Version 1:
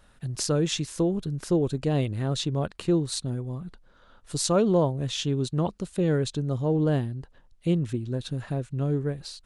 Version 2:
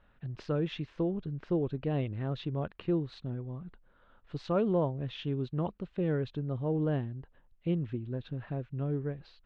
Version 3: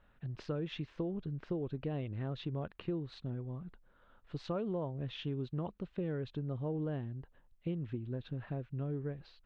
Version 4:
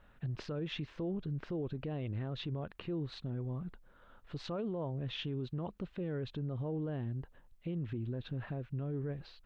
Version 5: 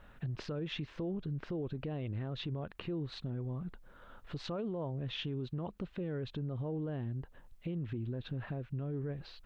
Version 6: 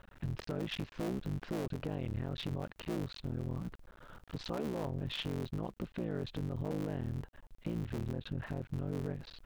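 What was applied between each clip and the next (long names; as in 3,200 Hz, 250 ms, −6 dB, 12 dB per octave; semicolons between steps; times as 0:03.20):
low-pass filter 3,000 Hz 24 dB per octave; level −6.5 dB
downward compressor, threshold −31 dBFS, peak gain reduction 7.5 dB; level −2 dB
brickwall limiter −35 dBFS, peak gain reduction 10 dB; level +4.5 dB
downward compressor 1.5 to 1, threshold −50 dBFS, peak gain reduction 6 dB; level +5.5 dB
sub-harmonics by changed cycles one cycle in 3, muted; level +2 dB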